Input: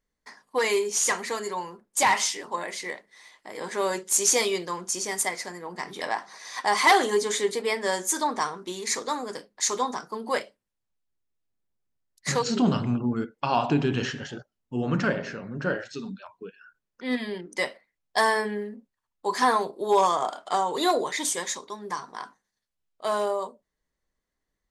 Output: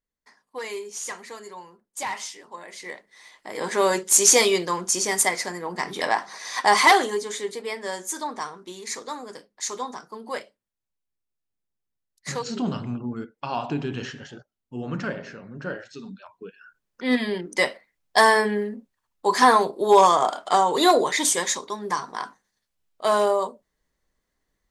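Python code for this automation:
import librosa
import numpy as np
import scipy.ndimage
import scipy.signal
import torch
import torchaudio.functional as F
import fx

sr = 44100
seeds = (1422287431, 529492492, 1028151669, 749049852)

y = fx.gain(x, sr, db=fx.line((2.63, -9.0), (2.93, -1.5), (3.65, 6.0), (6.76, 6.0), (7.22, -4.5), (15.92, -4.5), (17.05, 6.0)))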